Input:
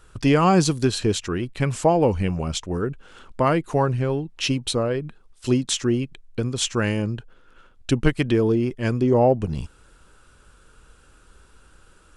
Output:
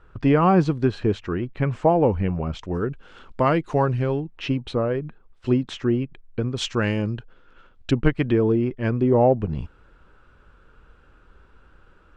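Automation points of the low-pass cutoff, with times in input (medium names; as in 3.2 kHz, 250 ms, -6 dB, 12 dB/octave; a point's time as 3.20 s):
1.9 kHz
from 2.59 s 4.6 kHz
from 4.20 s 2.1 kHz
from 6.57 s 4.2 kHz
from 7.91 s 2.3 kHz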